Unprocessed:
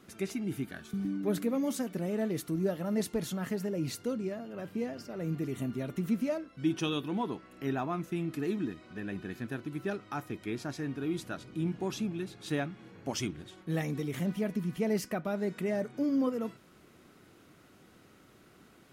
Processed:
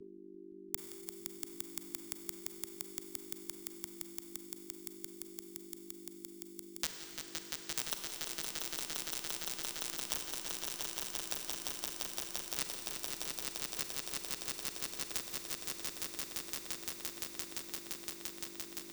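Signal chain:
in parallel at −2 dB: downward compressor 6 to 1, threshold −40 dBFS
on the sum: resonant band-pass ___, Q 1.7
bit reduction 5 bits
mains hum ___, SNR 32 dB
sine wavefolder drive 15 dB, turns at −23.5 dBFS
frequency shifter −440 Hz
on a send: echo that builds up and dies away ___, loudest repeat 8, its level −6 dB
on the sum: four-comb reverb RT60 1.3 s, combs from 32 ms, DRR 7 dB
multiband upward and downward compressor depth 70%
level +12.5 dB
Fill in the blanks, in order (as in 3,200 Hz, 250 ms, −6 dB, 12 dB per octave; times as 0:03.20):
1,600 Hz, 50 Hz, 172 ms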